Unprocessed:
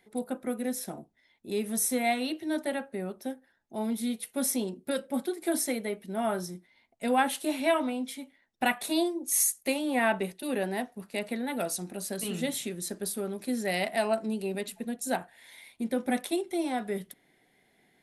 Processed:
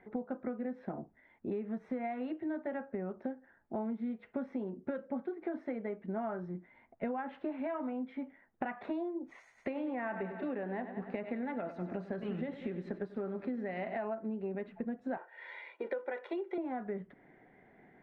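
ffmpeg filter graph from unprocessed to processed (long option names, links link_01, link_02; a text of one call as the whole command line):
ffmpeg -i in.wav -filter_complex "[0:a]asettb=1/sr,asplit=3[link_01][link_02][link_03];[link_01]atrim=end=9.394[link_04];[link_02]atrim=start=9.39:end=13.98,asetpts=PTS-STARTPTS,afade=type=in:duration=0.004:curve=qsin,afade=type=out:start_time=4.586:duration=0.004:curve=qsin,highshelf=frequency=4100:gain=9.5,aecho=1:1:95|190|285|380|475|570:0.224|0.125|0.0702|0.0393|0.022|0.0123,atrim=end_sample=202419[link_05];[link_03]atrim=start=13.976[link_06];[link_04][link_05]acrossfade=duration=0.004:curve1=hsin:curve2=qsin[link_07];[link_07][link_06]acrossfade=duration=0.004:curve1=qsin:curve2=hsin,asettb=1/sr,asplit=3[link_08][link_09][link_10];[link_08]atrim=end=15.174[link_11];[link_09]atrim=start=15.17:end=16.58,asetpts=PTS-STARTPTS,afade=type=in:duration=0.004:curve=qsin,afade=type=out:start_time=1.406:duration=0.004:curve=qsin,highpass=frequency=370:width=0.5412,highpass=frequency=370:width=1.3066,equalizer=frequency=8800:width_type=o:width=2.4:gain=11.5,aecho=1:1:2.1:0.62,atrim=end_sample=62181[link_12];[link_10]atrim=start=16.576[link_13];[link_11][link_12]acrossfade=duration=0.004:curve1=hsin:curve2=qsin[link_14];[link_14][link_13]acrossfade=duration=0.004:curve1=qsin:curve2=hsin,alimiter=limit=-19.5dB:level=0:latency=1:release=96,lowpass=frequency=1800:width=0.5412,lowpass=frequency=1800:width=1.3066,acompressor=threshold=-42dB:ratio=10,volume=7.5dB" out.wav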